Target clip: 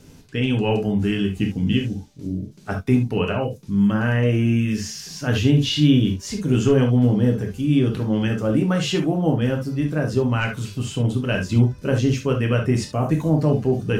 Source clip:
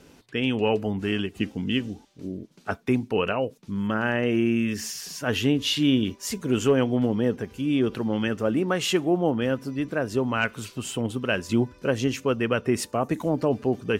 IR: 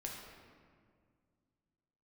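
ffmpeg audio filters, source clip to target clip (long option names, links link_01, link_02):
-filter_complex "[0:a]acrossover=split=6000[link_01][link_02];[link_02]acompressor=threshold=-52dB:ratio=4:attack=1:release=60[link_03];[link_01][link_03]amix=inputs=2:normalize=0,bass=frequency=250:gain=10,treble=frequency=4000:gain=7[link_04];[1:a]atrim=start_sample=2205,atrim=end_sample=3528[link_05];[link_04][link_05]afir=irnorm=-1:irlink=0,volume=3dB"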